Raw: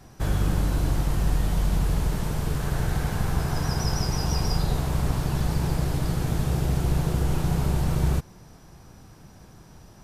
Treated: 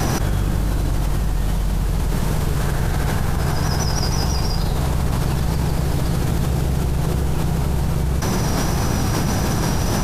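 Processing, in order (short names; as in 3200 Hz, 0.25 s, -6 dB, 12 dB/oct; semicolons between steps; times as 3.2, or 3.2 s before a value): wow and flutter 24 cents; fast leveller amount 100%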